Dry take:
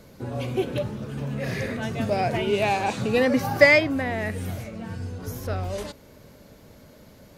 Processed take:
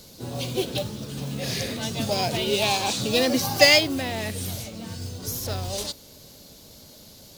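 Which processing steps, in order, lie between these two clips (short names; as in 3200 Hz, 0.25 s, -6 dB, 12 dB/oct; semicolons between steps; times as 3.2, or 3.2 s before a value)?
harmoniser +5 st -11 dB; resonant high shelf 2800 Hz +12 dB, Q 1.5; modulation noise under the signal 19 dB; gain -2 dB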